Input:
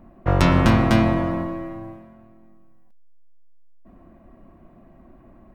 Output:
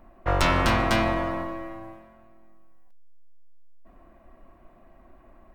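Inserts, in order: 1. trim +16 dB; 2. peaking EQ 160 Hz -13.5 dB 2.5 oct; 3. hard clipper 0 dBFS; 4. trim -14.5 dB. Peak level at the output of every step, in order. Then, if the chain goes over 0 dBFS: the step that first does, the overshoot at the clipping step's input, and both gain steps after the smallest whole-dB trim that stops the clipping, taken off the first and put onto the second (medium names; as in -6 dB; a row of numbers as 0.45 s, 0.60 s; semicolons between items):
+13.0 dBFS, +8.5 dBFS, 0.0 dBFS, -14.5 dBFS; step 1, 8.5 dB; step 1 +7 dB, step 4 -5.5 dB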